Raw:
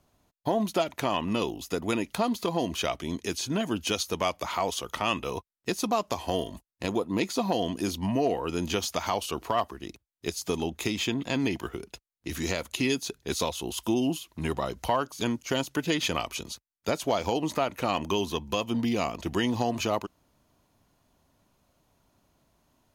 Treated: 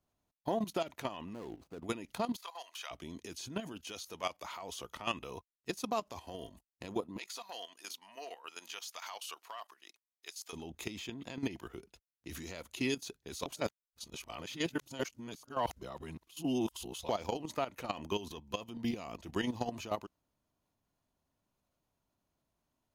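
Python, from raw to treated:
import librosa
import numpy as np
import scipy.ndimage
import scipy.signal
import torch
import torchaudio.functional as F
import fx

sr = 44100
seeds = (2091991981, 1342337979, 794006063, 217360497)

y = fx.median_filter(x, sr, points=25, at=(1.33, 1.85))
y = fx.highpass(y, sr, hz=840.0, slope=24, at=(2.36, 2.91))
y = fx.low_shelf(y, sr, hz=290.0, db=-8.0, at=(3.72, 4.63))
y = fx.highpass(y, sr, hz=1100.0, slope=12, at=(7.18, 10.53))
y = fx.edit(y, sr, fx.reverse_span(start_s=13.46, length_s=3.63), tone=tone)
y = fx.level_steps(y, sr, step_db=13)
y = F.gain(torch.from_numpy(y), -5.5).numpy()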